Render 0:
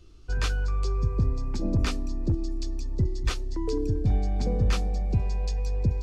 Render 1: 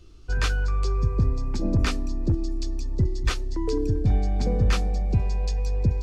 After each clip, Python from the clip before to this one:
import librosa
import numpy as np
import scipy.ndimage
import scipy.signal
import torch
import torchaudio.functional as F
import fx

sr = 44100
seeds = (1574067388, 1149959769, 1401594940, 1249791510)

y = fx.dynamic_eq(x, sr, hz=1700.0, q=1.4, threshold_db=-47.0, ratio=4.0, max_db=3)
y = y * librosa.db_to_amplitude(2.5)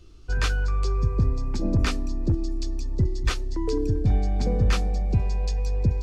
y = x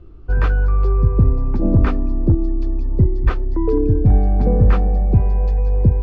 y = scipy.signal.sosfilt(scipy.signal.butter(2, 1200.0, 'lowpass', fs=sr, output='sos'), x)
y = y * librosa.db_to_amplitude(8.5)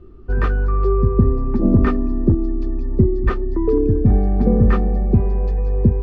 y = fx.small_body(x, sr, hz=(230.0, 380.0, 1200.0, 1800.0), ring_ms=60, db=11)
y = y * librosa.db_to_amplitude(-2.5)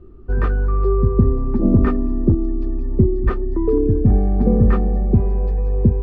y = fx.high_shelf(x, sr, hz=2100.0, db=-8.5)